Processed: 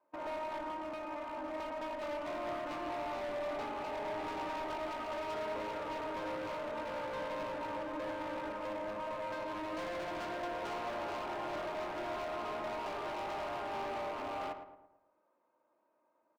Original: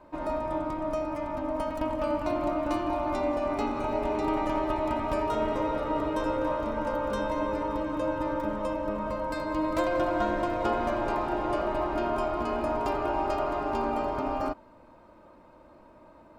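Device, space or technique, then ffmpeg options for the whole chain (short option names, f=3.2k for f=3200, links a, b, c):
walkie-talkie: -filter_complex "[0:a]asettb=1/sr,asplit=3[a][b][c];[a]atrim=end=0.614[d];[b]atrim=start=0.61:end=1.54,asetpts=PTS-STARTPTS,afade=t=in:d=0.004:c=qsin,afade=t=out:st=0.926:d=0.004:c=qsin,equalizer=f=630:t=o:w=0.26:g=-4.5[e];[c]atrim=start=1.536[f];[d][e]acrossfade=d=0.004:c1=hsin:c2=qsin[g];[g][f]acrossfade=d=0.004:c1=qsin:c2=hsin,highpass=400,lowpass=2.9k,asoftclip=type=hard:threshold=-34dB,agate=range=-17dB:threshold=-44dB:ratio=16:detection=peak,asplit=2[h][i];[i]adelay=111,lowpass=f=1.7k:p=1,volume=-8dB,asplit=2[j][k];[k]adelay=111,lowpass=f=1.7k:p=1,volume=0.48,asplit=2[l][m];[m]adelay=111,lowpass=f=1.7k:p=1,volume=0.48,asplit=2[n][o];[o]adelay=111,lowpass=f=1.7k:p=1,volume=0.48,asplit=2[p][q];[q]adelay=111,lowpass=f=1.7k:p=1,volume=0.48,asplit=2[r][s];[s]adelay=111,lowpass=f=1.7k:p=1,volume=0.48[t];[h][j][l][n][p][r][t]amix=inputs=7:normalize=0,volume=-4dB"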